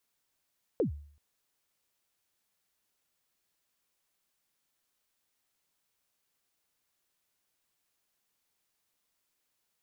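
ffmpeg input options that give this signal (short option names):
-f lavfi -i "aevalsrc='0.0794*pow(10,-3*t/0.54)*sin(2*PI*(540*0.113/log(73/540)*(exp(log(73/540)*min(t,0.113)/0.113)-1)+73*max(t-0.113,0)))':d=0.38:s=44100"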